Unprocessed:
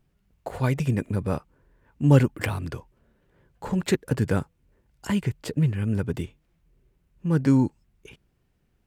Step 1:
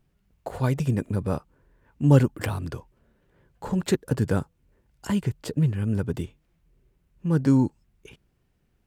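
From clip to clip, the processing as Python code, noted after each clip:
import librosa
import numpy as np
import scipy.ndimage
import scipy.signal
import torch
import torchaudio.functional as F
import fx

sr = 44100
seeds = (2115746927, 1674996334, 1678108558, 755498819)

y = fx.dynamic_eq(x, sr, hz=2200.0, q=1.9, threshold_db=-50.0, ratio=4.0, max_db=-6)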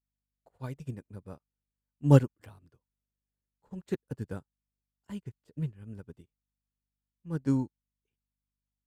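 y = fx.add_hum(x, sr, base_hz=50, snr_db=23)
y = fx.upward_expand(y, sr, threshold_db=-39.0, expansion=2.5)
y = y * 10.0 ** (-1.0 / 20.0)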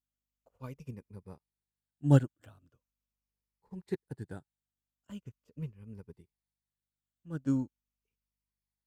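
y = fx.spec_ripple(x, sr, per_octave=0.85, drift_hz=-0.41, depth_db=8)
y = y * 10.0 ** (-5.0 / 20.0)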